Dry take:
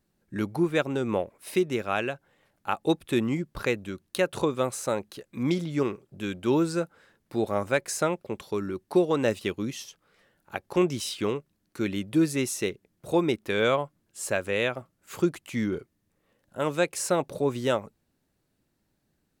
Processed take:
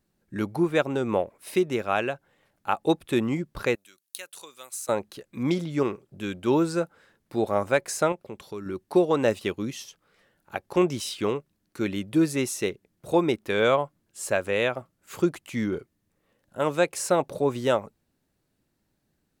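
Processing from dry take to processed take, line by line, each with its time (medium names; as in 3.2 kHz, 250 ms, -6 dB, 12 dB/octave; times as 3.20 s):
3.75–4.89 s: differentiator
8.12–8.66 s: compression 1.5:1, threshold -43 dBFS
whole clip: dynamic bell 770 Hz, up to +4 dB, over -35 dBFS, Q 0.84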